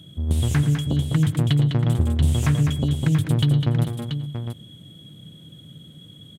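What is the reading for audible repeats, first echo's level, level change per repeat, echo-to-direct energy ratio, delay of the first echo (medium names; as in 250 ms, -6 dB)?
4, -14.0 dB, no regular repeats, -3.5 dB, 112 ms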